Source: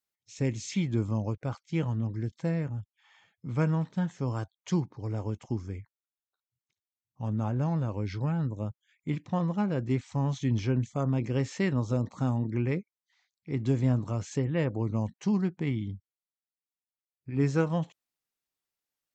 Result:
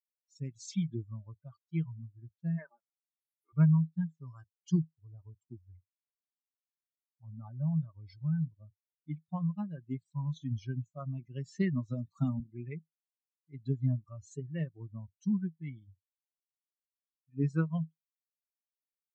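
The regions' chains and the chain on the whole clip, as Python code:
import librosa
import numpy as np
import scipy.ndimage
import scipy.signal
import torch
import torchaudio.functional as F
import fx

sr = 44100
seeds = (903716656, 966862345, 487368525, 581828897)

y = fx.spec_clip(x, sr, under_db=23, at=(2.57, 3.52), fade=0.02)
y = fx.env_lowpass_down(y, sr, base_hz=1600.0, full_db=-32.5, at=(2.57, 3.52), fade=0.02)
y = fx.highpass(y, sr, hz=330.0, slope=12, at=(2.57, 3.52), fade=0.02)
y = fx.chain(y, sr, fx.peak_eq(hz=370.0, db=2.5, octaves=2.8),
    fx.band_squash(depth_pct=70), at=(11.54, 12.4))
y = fx.bin_expand(y, sr, power=3.0)
y = fx.graphic_eq_31(y, sr, hz=(100, 160, 500, 800, 2500), db=(-5, 12, -9, -8, -6))
y = y * librosa.db_to_amplitude(-2.0)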